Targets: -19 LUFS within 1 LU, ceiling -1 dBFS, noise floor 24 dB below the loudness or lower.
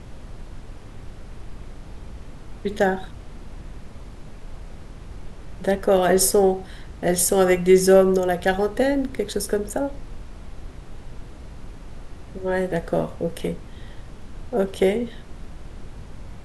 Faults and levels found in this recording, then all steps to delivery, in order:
noise floor -40 dBFS; noise floor target -46 dBFS; loudness -21.5 LUFS; peak level -4.5 dBFS; loudness target -19.0 LUFS
-> noise print and reduce 6 dB; trim +2.5 dB

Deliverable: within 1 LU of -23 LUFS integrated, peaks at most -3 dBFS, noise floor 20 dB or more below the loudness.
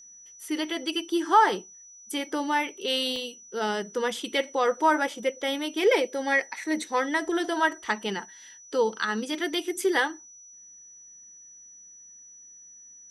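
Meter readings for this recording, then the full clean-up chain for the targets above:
dropouts 1; longest dropout 1.1 ms; steady tone 5.9 kHz; tone level -47 dBFS; loudness -27.0 LUFS; peak level -9.5 dBFS; loudness target -23.0 LUFS
-> interpolate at 3.16 s, 1.1 ms; band-stop 5.9 kHz, Q 30; trim +4 dB

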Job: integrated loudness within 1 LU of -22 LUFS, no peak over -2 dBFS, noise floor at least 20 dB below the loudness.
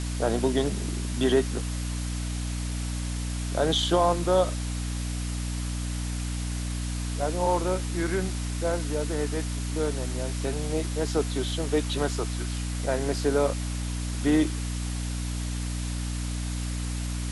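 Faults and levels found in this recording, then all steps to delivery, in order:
hum 60 Hz; highest harmonic 300 Hz; hum level -28 dBFS; noise floor -31 dBFS; noise floor target -49 dBFS; loudness -28.5 LUFS; peak level -10.5 dBFS; loudness target -22.0 LUFS
-> de-hum 60 Hz, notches 5; noise reduction 18 dB, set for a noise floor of -31 dBFS; trim +6.5 dB

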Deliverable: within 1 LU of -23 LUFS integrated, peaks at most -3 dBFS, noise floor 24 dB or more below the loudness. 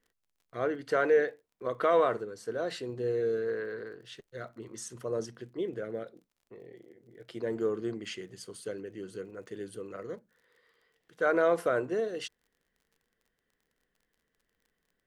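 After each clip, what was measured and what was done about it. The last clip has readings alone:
tick rate 27 per s; loudness -32.0 LUFS; peak level -14.5 dBFS; loudness target -23.0 LUFS
-> de-click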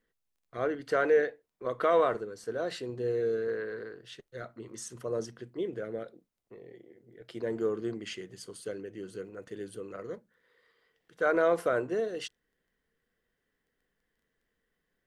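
tick rate 0 per s; loudness -32.0 LUFS; peak level -14.5 dBFS; loudness target -23.0 LUFS
-> trim +9 dB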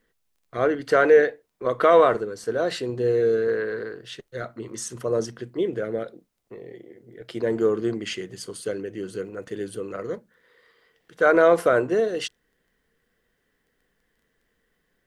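loudness -23.0 LUFS; peak level -5.5 dBFS; noise floor -73 dBFS

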